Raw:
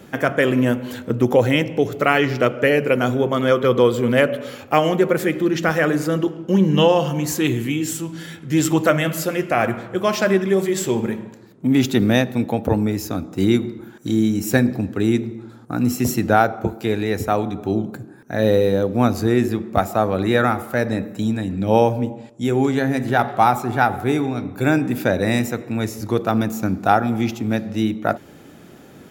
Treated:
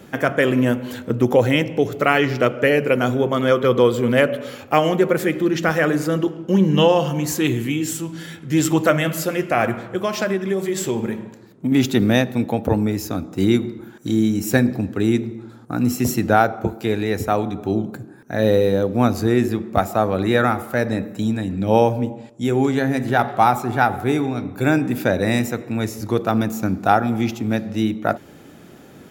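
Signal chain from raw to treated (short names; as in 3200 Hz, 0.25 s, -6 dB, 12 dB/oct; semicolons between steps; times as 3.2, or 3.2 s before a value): 9.78–11.72 compressor 4:1, threshold -18 dBFS, peak gain reduction 6.5 dB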